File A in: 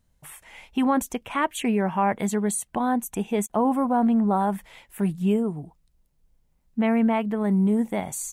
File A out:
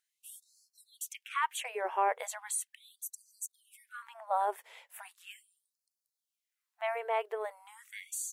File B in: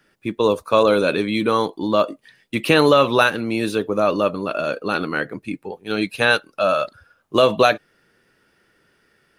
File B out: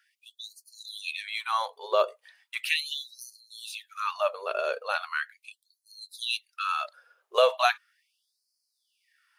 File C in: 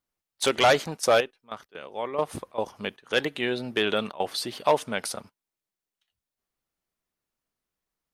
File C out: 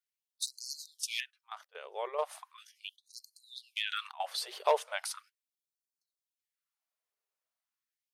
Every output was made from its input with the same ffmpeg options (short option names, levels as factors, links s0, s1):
-af "afftfilt=real='re*gte(b*sr/1024,370*pow(4200/370,0.5+0.5*sin(2*PI*0.38*pts/sr)))':imag='im*gte(b*sr/1024,370*pow(4200/370,0.5+0.5*sin(2*PI*0.38*pts/sr)))':win_size=1024:overlap=0.75,volume=0.531"